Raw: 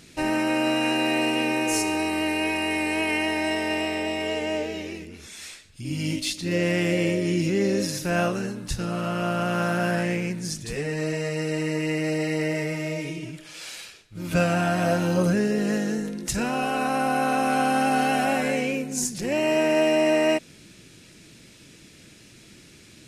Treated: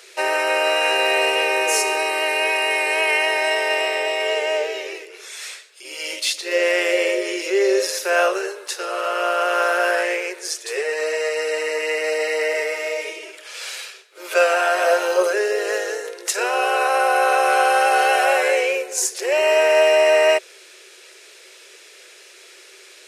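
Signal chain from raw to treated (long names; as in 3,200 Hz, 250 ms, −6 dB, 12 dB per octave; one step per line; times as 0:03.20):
Chebyshev high-pass with heavy ripple 370 Hz, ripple 3 dB
level +9 dB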